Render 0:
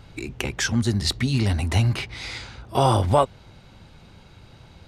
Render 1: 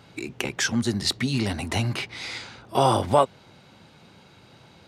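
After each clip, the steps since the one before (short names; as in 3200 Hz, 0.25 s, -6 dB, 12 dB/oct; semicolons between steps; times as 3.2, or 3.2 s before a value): HPF 160 Hz 12 dB/oct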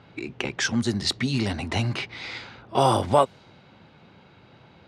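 low-pass opened by the level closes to 3000 Hz, open at -16 dBFS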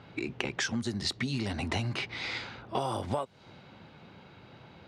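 compressor 12:1, threshold -28 dBFS, peak gain reduction 16 dB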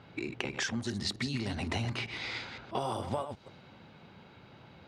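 reverse delay 0.129 s, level -8.5 dB; gain -2.5 dB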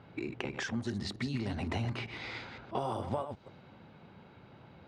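high shelf 2600 Hz -9.5 dB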